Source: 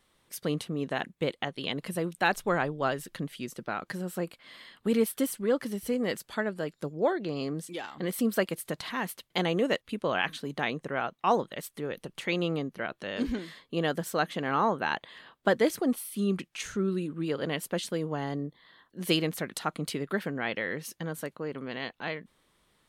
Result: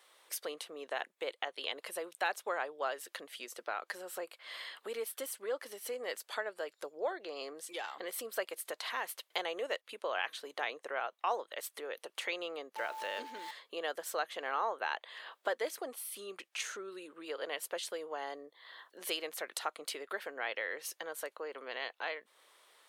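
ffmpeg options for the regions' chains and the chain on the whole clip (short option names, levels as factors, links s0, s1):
-filter_complex "[0:a]asettb=1/sr,asplit=3[s0][s1][s2];[s0]atrim=end=12.764[s3];[s1]atrim=start=12.76:end=13.51,asetpts=PTS-STARTPTS,afade=t=in:d=0.004:c=qsin,afade=t=out:st=0.746:d=0.004:c=qsin,aeval=exprs='val(0)+0.5*0.00596*sgn(val(0))':c=same,asubboost=boost=11:cutoff=250,aeval=exprs='val(0)+0.0112*sin(2*PI*880*n/s)':c=same[s4];[s2]atrim=start=13.506[s5];[s3][s4]acrossfade=d=0.004:c1=hsin:c2=qsin[s6];[s6][s5]acrossfade=d=0.004:c1=qsin:c2=hsin,acompressor=threshold=0.00447:ratio=2,highpass=f=470:w=0.5412,highpass=f=470:w=1.3066,volume=2"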